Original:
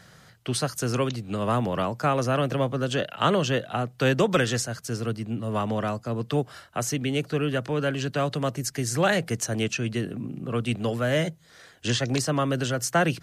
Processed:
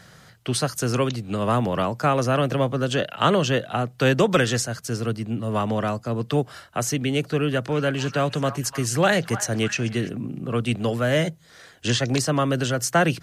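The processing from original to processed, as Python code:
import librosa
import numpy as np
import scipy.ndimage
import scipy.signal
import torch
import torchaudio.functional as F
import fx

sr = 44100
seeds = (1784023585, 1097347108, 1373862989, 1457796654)

y = fx.echo_stepped(x, sr, ms=300, hz=1100.0, octaves=0.7, feedback_pct=70, wet_db=-9.0, at=(7.69, 10.08), fade=0.02)
y = y * 10.0 ** (3.0 / 20.0)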